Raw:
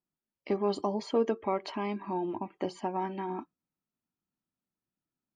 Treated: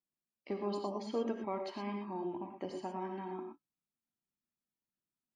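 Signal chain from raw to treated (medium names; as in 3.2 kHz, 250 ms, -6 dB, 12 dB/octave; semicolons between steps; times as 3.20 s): gated-style reverb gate 140 ms rising, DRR 3.5 dB; trim -8.5 dB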